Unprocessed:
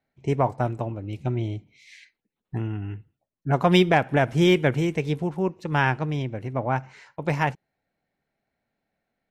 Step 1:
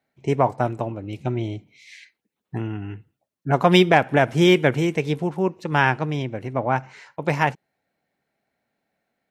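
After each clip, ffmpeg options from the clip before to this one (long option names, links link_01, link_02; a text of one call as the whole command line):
ffmpeg -i in.wav -af "highpass=frequency=160:poles=1,volume=4dB" out.wav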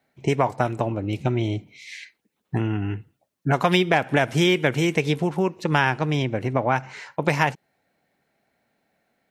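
ffmpeg -i in.wav -filter_complex "[0:a]acrossover=split=1500|3100[link_01][link_02][link_03];[link_01]acompressor=threshold=-25dB:ratio=4[link_04];[link_02]acompressor=threshold=-32dB:ratio=4[link_05];[link_03]acompressor=threshold=-37dB:ratio=4[link_06];[link_04][link_05][link_06]amix=inputs=3:normalize=0,volume=6dB" out.wav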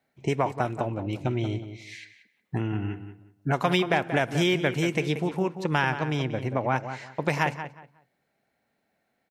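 ffmpeg -i in.wav -filter_complex "[0:a]asplit=2[link_01][link_02];[link_02]adelay=182,lowpass=frequency=2600:poles=1,volume=-10dB,asplit=2[link_03][link_04];[link_04]adelay=182,lowpass=frequency=2600:poles=1,volume=0.24,asplit=2[link_05][link_06];[link_06]adelay=182,lowpass=frequency=2600:poles=1,volume=0.24[link_07];[link_01][link_03][link_05][link_07]amix=inputs=4:normalize=0,volume=-4.5dB" out.wav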